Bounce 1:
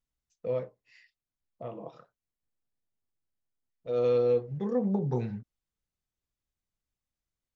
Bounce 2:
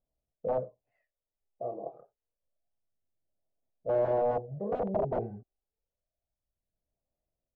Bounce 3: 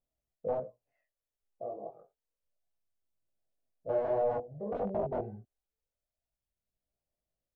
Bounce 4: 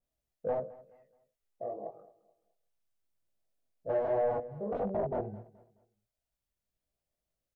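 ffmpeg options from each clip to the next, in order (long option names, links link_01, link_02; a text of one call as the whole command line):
ffmpeg -i in.wav -af "aphaser=in_gain=1:out_gain=1:delay=2.6:decay=0.53:speed=0.28:type=sinusoidal,aeval=exprs='(mod(15.8*val(0)+1,2)-1)/15.8':channel_layout=same,lowpass=frequency=640:width_type=q:width=4.9,volume=-4.5dB" out.wav
ffmpeg -i in.wav -af "flanger=delay=18:depth=2.6:speed=2.6" out.wav
ffmpeg -i in.wav -af "asoftclip=type=tanh:threshold=-23dB,aecho=1:1:213|426|639:0.1|0.034|0.0116,adynamicequalizer=threshold=0.00501:dfrequency=1700:dqfactor=0.7:tfrequency=1700:tqfactor=0.7:attack=5:release=100:ratio=0.375:range=2.5:mode=cutabove:tftype=highshelf,volume=1.5dB" out.wav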